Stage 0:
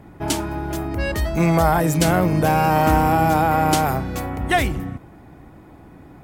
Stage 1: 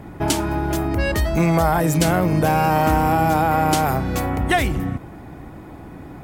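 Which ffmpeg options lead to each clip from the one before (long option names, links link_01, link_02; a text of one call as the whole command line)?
ffmpeg -i in.wav -af "acompressor=threshold=-26dB:ratio=2,volume=6.5dB" out.wav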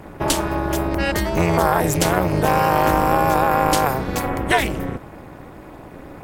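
ffmpeg -i in.wav -af "lowshelf=frequency=220:gain=-6.5,tremolo=f=260:d=1,volume=6dB" out.wav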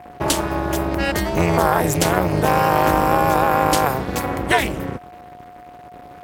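ffmpeg -i in.wav -af "aeval=exprs='sgn(val(0))*max(abs(val(0))-0.0141,0)':channel_layout=same,highpass=48,aeval=exprs='val(0)+0.01*sin(2*PI*720*n/s)':channel_layout=same,volume=1dB" out.wav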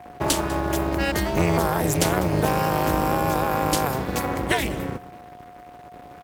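ffmpeg -i in.wav -filter_complex "[0:a]acrossover=split=410|3000[link_01][link_02][link_03];[link_02]acompressor=threshold=-19dB:ratio=6[link_04];[link_01][link_04][link_03]amix=inputs=3:normalize=0,asplit=2[link_05][link_06];[link_06]acrusher=bits=2:mode=log:mix=0:aa=0.000001,volume=-11dB[link_07];[link_05][link_07]amix=inputs=2:normalize=0,aecho=1:1:198:0.119,volume=-4.5dB" out.wav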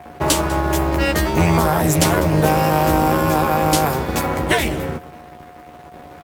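ffmpeg -i in.wav -filter_complex "[0:a]asplit=2[link_01][link_02];[link_02]adelay=13,volume=-4.5dB[link_03];[link_01][link_03]amix=inputs=2:normalize=0,volume=4dB" out.wav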